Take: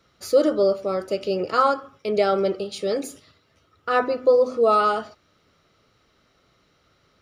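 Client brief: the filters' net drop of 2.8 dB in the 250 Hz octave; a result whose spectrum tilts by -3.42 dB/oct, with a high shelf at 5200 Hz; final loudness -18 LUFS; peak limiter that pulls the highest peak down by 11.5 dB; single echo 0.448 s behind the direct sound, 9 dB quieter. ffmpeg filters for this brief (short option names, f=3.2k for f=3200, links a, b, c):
-af "equalizer=f=250:t=o:g=-4,highshelf=f=5.2k:g=-6.5,alimiter=limit=-19dB:level=0:latency=1,aecho=1:1:448:0.355,volume=10.5dB"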